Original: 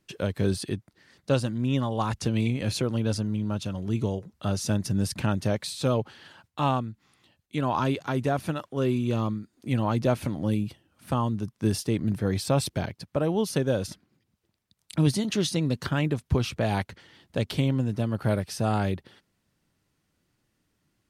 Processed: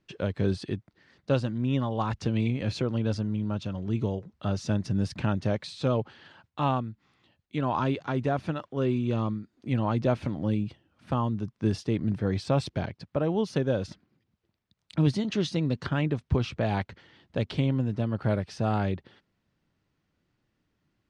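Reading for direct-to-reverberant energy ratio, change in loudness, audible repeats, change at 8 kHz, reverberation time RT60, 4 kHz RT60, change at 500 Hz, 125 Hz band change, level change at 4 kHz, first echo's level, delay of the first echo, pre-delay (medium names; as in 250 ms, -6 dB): no reverb, -1.5 dB, no echo, -12.0 dB, no reverb, no reverb, -1.5 dB, -1.0 dB, -5.0 dB, no echo, no echo, no reverb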